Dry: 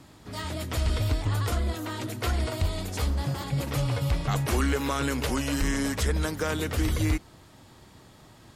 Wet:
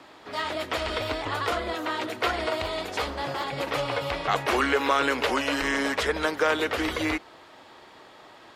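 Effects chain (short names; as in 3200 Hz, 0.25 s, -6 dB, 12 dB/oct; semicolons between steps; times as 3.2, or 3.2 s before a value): three-band isolator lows -23 dB, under 350 Hz, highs -16 dB, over 4200 Hz; gain +8 dB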